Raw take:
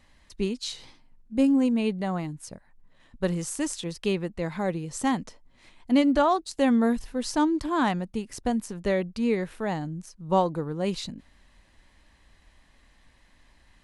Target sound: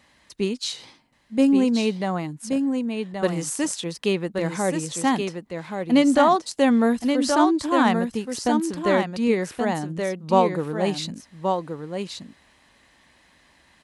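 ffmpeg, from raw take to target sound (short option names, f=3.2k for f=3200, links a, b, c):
-af "highpass=73,lowshelf=f=130:g=-9,aecho=1:1:1126:0.531,volume=5dB"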